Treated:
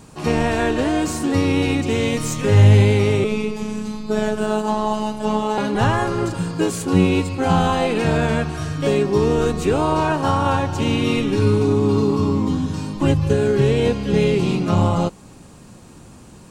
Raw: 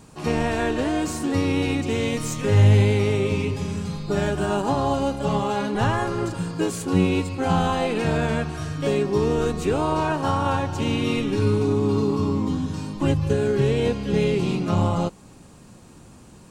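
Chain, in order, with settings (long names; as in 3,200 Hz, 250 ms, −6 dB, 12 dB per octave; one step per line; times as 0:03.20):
0:03.24–0:05.58: phases set to zero 214 Hz
level +4 dB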